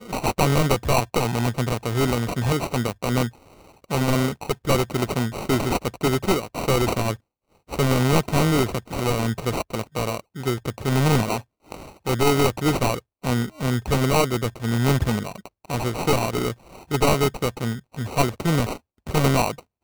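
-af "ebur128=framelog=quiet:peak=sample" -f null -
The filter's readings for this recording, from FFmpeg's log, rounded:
Integrated loudness:
  I:         -23.2 LUFS
  Threshold: -33.5 LUFS
Loudness range:
  LRA:         1.9 LU
  Threshold: -43.7 LUFS
  LRA low:   -24.6 LUFS
  LRA high:  -22.7 LUFS
Sample peak:
  Peak:       -6.2 dBFS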